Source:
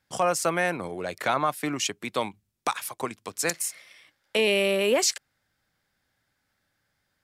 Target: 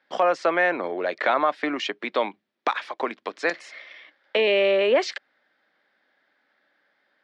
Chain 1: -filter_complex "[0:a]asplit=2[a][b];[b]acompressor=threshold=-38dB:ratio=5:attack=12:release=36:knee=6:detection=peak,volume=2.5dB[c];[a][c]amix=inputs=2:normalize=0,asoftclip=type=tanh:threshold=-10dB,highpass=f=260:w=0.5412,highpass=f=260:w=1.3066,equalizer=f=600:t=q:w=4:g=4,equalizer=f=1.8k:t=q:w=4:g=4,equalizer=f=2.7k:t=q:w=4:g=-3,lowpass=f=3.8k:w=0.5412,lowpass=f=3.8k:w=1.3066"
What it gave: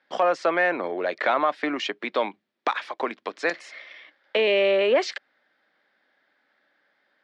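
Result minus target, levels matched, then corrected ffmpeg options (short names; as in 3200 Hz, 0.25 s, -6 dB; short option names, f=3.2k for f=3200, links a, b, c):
soft clip: distortion +15 dB
-filter_complex "[0:a]asplit=2[a][b];[b]acompressor=threshold=-38dB:ratio=5:attack=12:release=36:knee=6:detection=peak,volume=2.5dB[c];[a][c]amix=inputs=2:normalize=0,asoftclip=type=tanh:threshold=-2dB,highpass=f=260:w=0.5412,highpass=f=260:w=1.3066,equalizer=f=600:t=q:w=4:g=4,equalizer=f=1.8k:t=q:w=4:g=4,equalizer=f=2.7k:t=q:w=4:g=-3,lowpass=f=3.8k:w=0.5412,lowpass=f=3.8k:w=1.3066"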